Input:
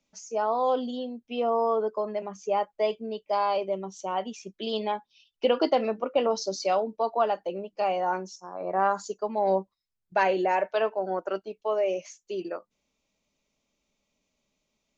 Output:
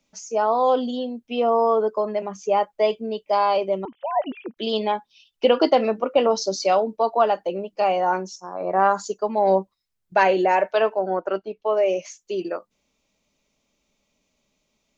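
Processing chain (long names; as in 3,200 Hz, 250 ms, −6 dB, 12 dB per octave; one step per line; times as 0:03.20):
0:03.85–0:04.57: three sine waves on the formant tracks
0:11.01–0:11.77: high-frequency loss of the air 160 metres
level +6 dB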